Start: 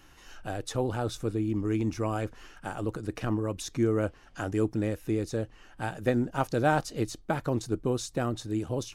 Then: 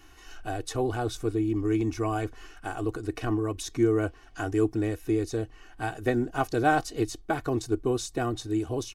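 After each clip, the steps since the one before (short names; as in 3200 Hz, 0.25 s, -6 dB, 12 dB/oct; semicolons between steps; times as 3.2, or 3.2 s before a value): comb 2.7 ms, depth 69%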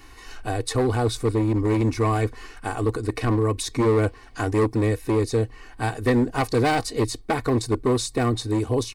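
hard clip -23 dBFS, distortion -11 dB; ripple EQ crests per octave 0.95, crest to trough 7 dB; gain +7 dB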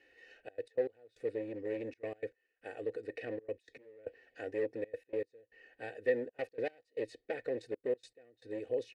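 vowel filter e; step gate "xxxxx.x.x...xxx" 155 bpm -24 dB; gain -2.5 dB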